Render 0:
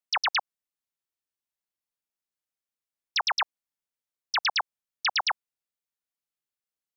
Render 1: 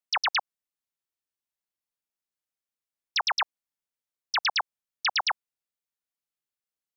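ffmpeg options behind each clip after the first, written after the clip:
ffmpeg -i in.wav -af anull out.wav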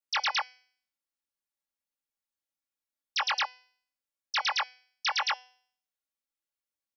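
ffmpeg -i in.wav -af "flanger=delay=19.5:depth=2.4:speed=1.9,aecho=1:1:3.6:0.87,bandreject=frequency=251.1:width_type=h:width=4,bandreject=frequency=502.2:width_type=h:width=4,bandreject=frequency=753.3:width_type=h:width=4,bandreject=frequency=1004.4:width_type=h:width=4,bandreject=frequency=1255.5:width_type=h:width=4,bandreject=frequency=1506.6:width_type=h:width=4,bandreject=frequency=1757.7:width_type=h:width=4,bandreject=frequency=2008.8:width_type=h:width=4,bandreject=frequency=2259.9:width_type=h:width=4,bandreject=frequency=2511:width_type=h:width=4,bandreject=frequency=2762.1:width_type=h:width=4,bandreject=frequency=3013.2:width_type=h:width=4,bandreject=frequency=3264.3:width_type=h:width=4,bandreject=frequency=3515.4:width_type=h:width=4,bandreject=frequency=3766.5:width_type=h:width=4,bandreject=frequency=4017.6:width_type=h:width=4,bandreject=frequency=4268.7:width_type=h:width=4,bandreject=frequency=4519.8:width_type=h:width=4,bandreject=frequency=4770.9:width_type=h:width=4,bandreject=frequency=5022:width_type=h:width=4,bandreject=frequency=5273.1:width_type=h:width=4,bandreject=frequency=5524.2:width_type=h:width=4,bandreject=frequency=5775.3:width_type=h:width=4,bandreject=frequency=6026.4:width_type=h:width=4,bandreject=frequency=6277.5:width_type=h:width=4,bandreject=frequency=6528.6:width_type=h:width=4,bandreject=frequency=6779.7:width_type=h:width=4,bandreject=frequency=7030.8:width_type=h:width=4,bandreject=frequency=7281.9:width_type=h:width=4,bandreject=frequency=7533:width_type=h:width=4,bandreject=frequency=7784.1:width_type=h:width=4,bandreject=frequency=8035.2:width_type=h:width=4,bandreject=frequency=8286.3:width_type=h:width=4,bandreject=frequency=8537.4:width_type=h:width=4,bandreject=frequency=8788.5:width_type=h:width=4,bandreject=frequency=9039.6:width_type=h:width=4,bandreject=frequency=9290.7:width_type=h:width=4,bandreject=frequency=9541.8:width_type=h:width=4,bandreject=frequency=9792.9:width_type=h:width=4,volume=-1.5dB" out.wav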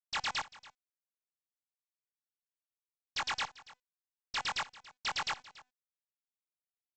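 ffmpeg -i in.wav -af "adynamicsmooth=sensitivity=6:basefreq=1800,aresample=16000,acrusher=bits=6:dc=4:mix=0:aa=0.000001,aresample=44100,aecho=1:1:283:0.106,volume=-6.5dB" out.wav

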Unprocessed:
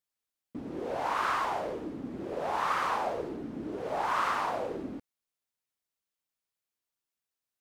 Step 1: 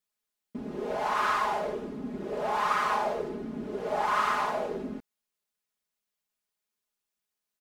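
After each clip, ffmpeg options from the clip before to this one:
ffmpeg -i in.wav -af "aecho=1:1:4.8:0.9" out.wav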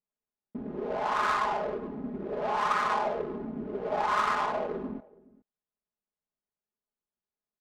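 ffmpeg -i in.wav -af "aecho=1:1:419:0.0794,adynamicsmooth=sensitivity=4:basefreq=1100" out.wav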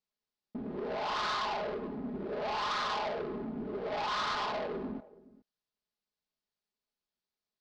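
ffmpeg -i in.wav -af "asoftclip=type=tanh:threshold=-31.5dB,lowpass=frequency=4600:width_type=q:width=2.4" out.wav

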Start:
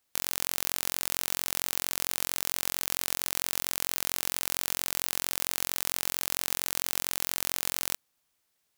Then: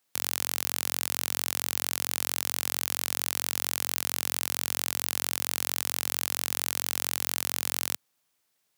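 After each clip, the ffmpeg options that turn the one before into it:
ffmpeg -i in.wav -af "highpass=frequency=94:width=0.5412,highpass=frequency=94:width=1.3066,volume=1dB" out.wav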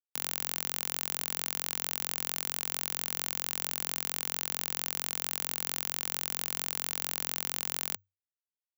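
ffmpeg -i in.wav -af "acrusher=bits=3:mix=0:aa=0.5,afreqshift=95,volume=-4dB" out.wav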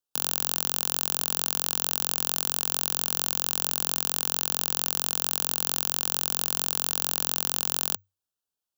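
ffmpeg -i in.wav -af "asuperstop=centerf=2100:order=4:qfactor=2,volume=7dB" out.wav

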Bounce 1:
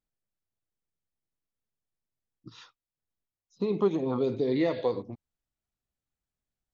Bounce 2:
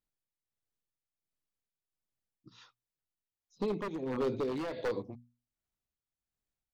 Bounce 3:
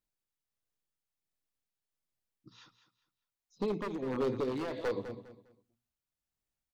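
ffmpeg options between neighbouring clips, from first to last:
ffmpeg -i in.wav -af "aeval=exprs='0.0708*(abs(mod(val(0)/0.0708+3,4)-2)-1)':channel_layout=same,tremolo=f=1.4:d=0.54,bandreject=frequency=60:width_type=h:width=6,bandreject=frequency=120:width_type=h:width=6,bandreject=frequency=180:width_type=h:width=6,bandreject=frequency=240:width_type=h:width=6,volume=-2dB" out.wav
ffmpeg -i in.wav -af "aecho=1:1:202|404|606:0.251|0.0678|0.0183" out.wav

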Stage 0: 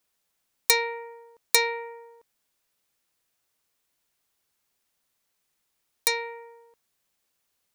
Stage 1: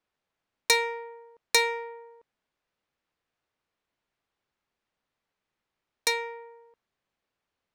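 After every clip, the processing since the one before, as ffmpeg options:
ffmpeg -i in.wav -af "adynamicsmooth=sensitivity=4.5:basefreq=3100" out.wav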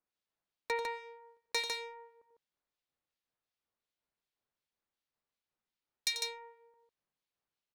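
ffmpeg -i in.wav -filter_complex "[0:a]equalizer=frequency=4200:width_type=o:width=1.1:gain=4.5,acrossover=split=2000[link_01][link_02];[link_01]aeval=exprs='val(0)*(1-1/2+1/2*cos(2*PI*2.7*n/s))':channel_layout=same[link_03];[link_02]aeval=exprs='val(0)*(1-1/2-1/2*cos(2*PI*2.7*n/s))':channel_layout=same[link_04];[link_03][link_04]amix=inputs=2:normalize=0,asplit=2[link_05][link_06];[link_06]aecho=0:1:90.38|151.6:0.316|0.631[link_07];[link_05][link_07]amix=inputs=2:normalize=0,volume=-7.5dB" out.wav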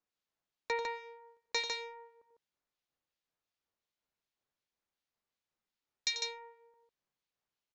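ffmpeg -i in.wav -af "aresample=16000,aresample=44100" out.wav

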